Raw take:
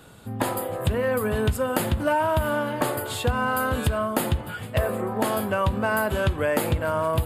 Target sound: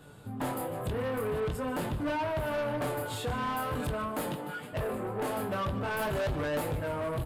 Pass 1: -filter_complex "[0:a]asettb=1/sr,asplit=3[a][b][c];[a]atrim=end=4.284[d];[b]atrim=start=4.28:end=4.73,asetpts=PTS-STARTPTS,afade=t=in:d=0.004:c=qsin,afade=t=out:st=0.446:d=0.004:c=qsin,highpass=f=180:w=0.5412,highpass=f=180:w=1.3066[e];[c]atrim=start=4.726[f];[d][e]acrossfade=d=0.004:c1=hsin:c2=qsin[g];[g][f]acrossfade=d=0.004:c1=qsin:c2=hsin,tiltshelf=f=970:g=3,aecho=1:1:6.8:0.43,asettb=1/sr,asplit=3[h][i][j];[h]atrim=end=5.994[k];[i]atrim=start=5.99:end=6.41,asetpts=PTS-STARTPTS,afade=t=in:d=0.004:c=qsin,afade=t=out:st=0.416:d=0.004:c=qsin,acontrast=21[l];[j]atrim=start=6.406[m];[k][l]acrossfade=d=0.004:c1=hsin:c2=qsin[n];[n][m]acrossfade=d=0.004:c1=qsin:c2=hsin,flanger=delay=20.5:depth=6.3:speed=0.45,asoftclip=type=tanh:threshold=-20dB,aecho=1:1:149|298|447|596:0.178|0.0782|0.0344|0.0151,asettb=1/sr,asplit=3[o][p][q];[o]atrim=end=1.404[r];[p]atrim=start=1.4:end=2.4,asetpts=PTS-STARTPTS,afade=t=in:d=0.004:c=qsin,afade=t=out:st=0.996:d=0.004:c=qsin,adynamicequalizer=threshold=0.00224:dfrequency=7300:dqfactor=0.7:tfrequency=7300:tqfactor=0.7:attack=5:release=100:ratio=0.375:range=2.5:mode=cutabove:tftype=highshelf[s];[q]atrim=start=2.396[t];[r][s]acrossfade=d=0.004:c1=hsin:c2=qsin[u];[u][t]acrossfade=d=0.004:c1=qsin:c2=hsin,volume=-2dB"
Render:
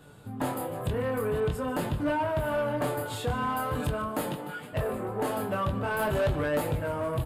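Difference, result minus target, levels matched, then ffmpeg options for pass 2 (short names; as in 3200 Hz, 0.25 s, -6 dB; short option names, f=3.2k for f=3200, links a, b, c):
soft clip: distortion -5 dB
-filter_complex "[0:a]asettb=1/sr,asplit=3[a][b][c];[a]atrim=end=4.284[d];[b]atrim=start=4.28:end=4.73,asetpts=PTS-STARTPTS,afade=t=in:d=0.004:c=qsin,afade=t=out:st=0.446:d=0.004:c=qsin,highpass=f=180:w=0.5412,highpass=f=180:w=1.3066[e];[c]atrim=start=4.726[f];[d][e]acrossfade=d=0.004:c1=hsin:c2=qsin[g];[g][f]acrossfade=d=0.004:c1=qsin:c2=hsin,tiltshelf=f=970:g=3,aecho=1:1:6.8:0.43,asettb=1/sr,asplit=3[h][i][j];[h]atrim=end=5.994[k];[i]atrim=start=5.99:end=6.41,asetpts=PTS-STARTPTS,afade=t=in:d=0.004:c=qsin,afade=t=out:st=0.416:d=0.004:c=qsin,acontrast=21[l];[j]atrim=start=6.406[m];[k][l]acrossfade=d=0.004:c1=hsin:c2=qsin[n];[n][m]acrossfade=d=0.004:c1=qsin:c2=hsin,flanger=delay=20.5:depth=6.3:speed=0.45,asoftclip=type=tanh:threshold=-26.5dB,aecho=1:1:149|298|447|596:0.178|0.0782|0.0344|0.0151,asettb=1/sr,asplit=3[o][p][q];[o]atrim=end=1.404[r];[p]atrim=start=1.4:end=2.4,asetpts=PTS-STARTPTS,afade=t=in:d=0.004:c=qsin,afade=t=out:st=0.996:d=0.004:c=qsin,adynamicequalizer=threshold=0.00224:dfrequency=7300:dqfactor=0.7:tfrequency=7300:tqfactor=0.7:attack=5:release=100:ratio=0.375:range=2.5:mode=cutabove:tftype=highshelf[s];[q]atrim=start=2.396[t];[r][s]acrossfade=d=0.004:c1=hsin:c2=qsin[u];[u][t]acrossfade=d=0.004:c1=qsin:c2=hsin,volume=-2dB"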